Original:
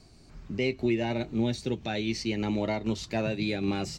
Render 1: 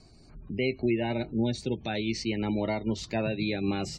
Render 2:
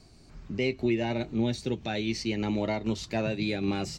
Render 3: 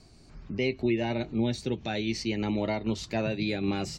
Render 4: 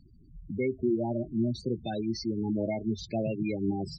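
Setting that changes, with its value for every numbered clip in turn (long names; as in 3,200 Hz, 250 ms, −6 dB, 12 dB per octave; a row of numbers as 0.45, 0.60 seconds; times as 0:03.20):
gate on every frequency bin, under each frame's peak: −30, −60, −45, −10 decibels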